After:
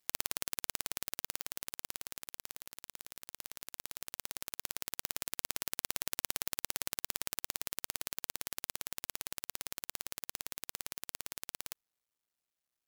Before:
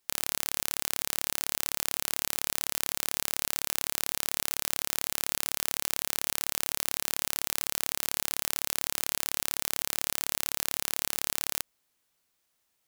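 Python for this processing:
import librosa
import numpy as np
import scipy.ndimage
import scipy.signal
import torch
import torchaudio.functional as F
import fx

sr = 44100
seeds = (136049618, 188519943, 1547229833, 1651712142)

y = fx.cycle_switch(x, sr, every=2, mode='muted')
y = fx.doppler_pass(y, sr, speed_mps=7, closest_m=4.7, pass_at_s=2.96)
y = fx.over_compress(y, sr, threshold_db=-47.0, ratio=-1.0)
y = F.gain(torch.from_numpy(y), 6.5).numpy()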